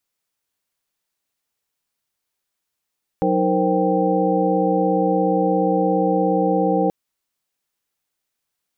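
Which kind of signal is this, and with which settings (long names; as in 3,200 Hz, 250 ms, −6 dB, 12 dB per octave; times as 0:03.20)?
held notes F#3/D#4/A#4/C5/G5 sine, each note −22 dBFS 3.68 s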